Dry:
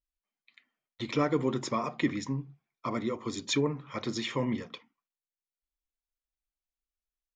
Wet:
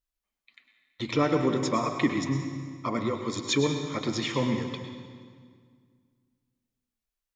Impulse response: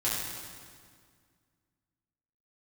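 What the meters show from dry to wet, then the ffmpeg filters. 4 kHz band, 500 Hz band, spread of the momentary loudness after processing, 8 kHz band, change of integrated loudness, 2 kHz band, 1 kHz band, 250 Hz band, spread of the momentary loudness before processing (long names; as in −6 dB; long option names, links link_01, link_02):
+4.0 dB, +4.0 dB, 12 LU, +4.0 dB, +3.5 dB, +4.0 dB, +4.5 dB, +4.0 dB, 11 LU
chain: -filter_complex "[0:a]asplit=2[link_01][link_02];[1:a]atrim=start_sample=2205,adelay=101[link_03];[link_02][link_03]afir=irnorm=-1:irlink=0,volume=-14dB[link_04];[link_01][link_04]amix=inputs=2:normalize=0,volume=3dB"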